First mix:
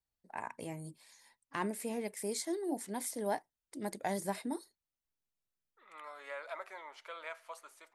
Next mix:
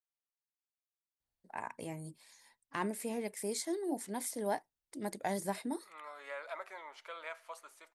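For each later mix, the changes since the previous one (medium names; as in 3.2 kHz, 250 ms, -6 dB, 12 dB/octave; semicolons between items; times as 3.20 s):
first voice: entry +1.20 s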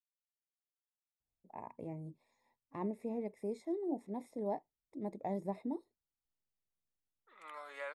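first voice: add boxcar filter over 29 samples; second voice: entry +1.50 s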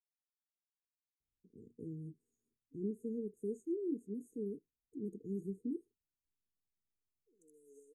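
master: add brick-wall FIR band-stop 480–5900 Hz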